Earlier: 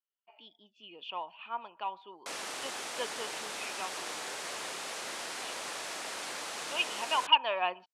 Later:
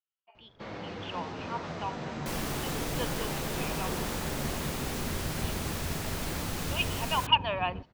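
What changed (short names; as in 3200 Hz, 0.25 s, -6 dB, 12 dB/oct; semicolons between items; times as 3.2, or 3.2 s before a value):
first sound: unmuted; second sound: remove HPF 520 Hz; master: remove LPF 9900 Hz 24 dB/oct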